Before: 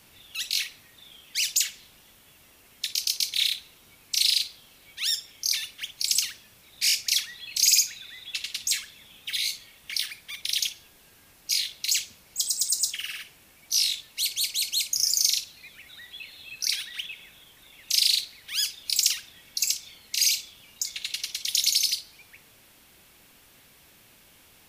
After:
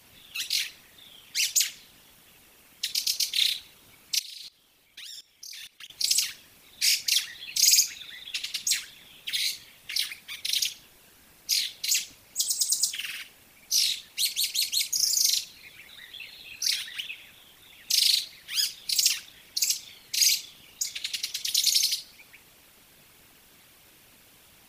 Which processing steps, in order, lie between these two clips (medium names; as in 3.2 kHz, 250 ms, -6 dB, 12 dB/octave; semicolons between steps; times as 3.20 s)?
whisper effect; 4.19–5.90 s: level held to a coarse grid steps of 21 dB